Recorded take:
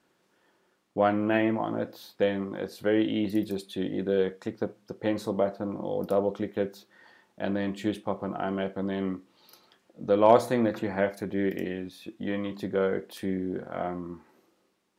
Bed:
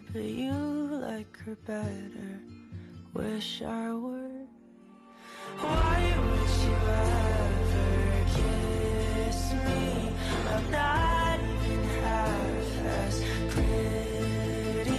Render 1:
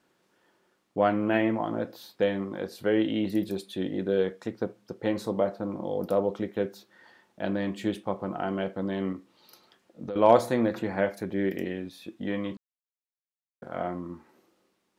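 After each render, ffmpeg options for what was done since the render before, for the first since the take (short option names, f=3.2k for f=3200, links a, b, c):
-filter_complex "[0:a]asettb=1/sr,asplit=3[a][b][c];[a]atrim=end=9.124[d];[b]atrim=start=9.12:end=10.16,asetpts=PTS-STARTPTS,afade=t=in:d=0.004:c=qsin,afade=t=out:st=1.036:d=0.004:c=qsin,acompressor=threshold=-31dB:ratio=6:attack=3.2:release=140:knee=1:detection=peak[e];[c]atrim=start=10.156[f];[d][e]acrossfade=d=0.004:c1=hsin:c2=qsin[g];[g][f]acrossfade=d=0.004:c1=qsin:c2=hsin,asplit=3[h][i][j];[h]atrim=end=12.57,asetpts=PTS-STARTPTS,afade=t=out:st=12.566:d=0.004:c=hsin[k];[i]atrim=start=12.57:end=13.62,asetpts=PTS-STARTPTS,volume=0[l];[j]atrim=start=13.62,asetpts=PTS-STARTPTS,afade=t=in:d=0.004:c=hsin[m];[k][l][m]concat=n=3:v=0:a=1"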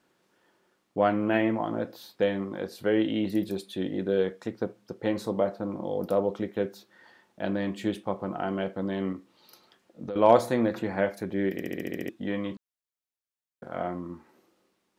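-filter_complex "[0:a]asplit=9[a][b][c][d][e][f][g][h][i];[a]atrim=end=11.602[j];[b]atrim=start=11.528:end=11.602[k];[c]atrim=start=11.528:end=11.602[l];[d]atrim=start=11.528:end=11.602[m];[e]atrim=start=11.528:end=11.602[n];[f]atrim=start=11.528:end=11.602[o];[g]atrim=start=11.528:end=11.602[p];[h]atrim=start=11.528:end=11.602[q];[i]atrim=start=12.088[r];[j][k]acrossfade=d=0.004:c1=hsin:c2=hsin[s];[s][l]acrossfade=d=0.004:c1=hsin:c2=hsin[t];[t][m]acrossfade=d=0.004:c1=hsin:c2=hsin[u];[u][n]acrossfade=d=0.004:c1=hsin:c2=hsin[v];[v][o]acrossfade=d=0.004:c1=hsin:c2=hsin[w];[w][p]acrossfade=d=0.004:c1=hsin:c2=hsin[x];[x][q]acrossfade=d=0.004:c1=hsin:c2=hsin[y];[y][r]acrossfade=d=0.004:c1=hsin:c2=hsin"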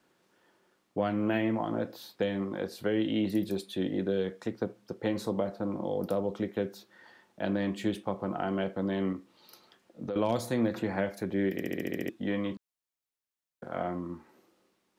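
-filter_complex "[0:a]acrossover=split=240|3000[a][b][c];[b]acompressor=threshold=-28dB:ratio=6[d];[a][d][c]amix=inputs=3:normalize=0"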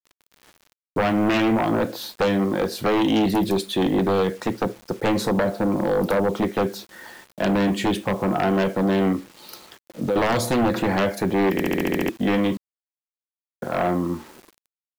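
-af "acrusher=bits=9:mix=0:aa=0.000001,aeval=exprs='0.168*sin(PI/2*3.16*val(0)/0.168)':c=same"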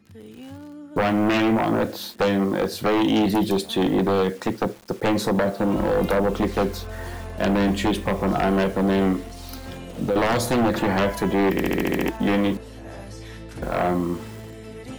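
-filter_complex "[1:a]volume=-8dB[a];[0:a][a]amix=inputs=2:normalize=0"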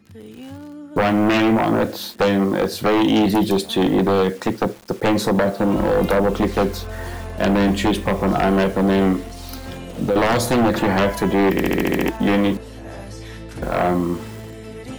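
-af "volume=3.5dB"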